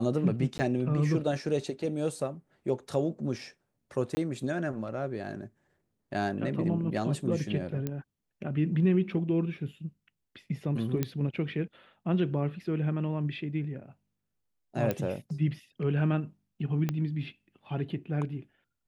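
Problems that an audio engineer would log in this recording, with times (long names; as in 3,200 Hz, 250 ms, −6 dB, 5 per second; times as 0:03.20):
0:00.58–0:00.59: drop-out 10 ms
0:04.15–0:04.17: drop-out 20 ms
0:07.87: click −19 dBFS
0:11.03: click −15 dBFS
0:14.91: click −16 dBFS
0:16.89: click −17 dBFS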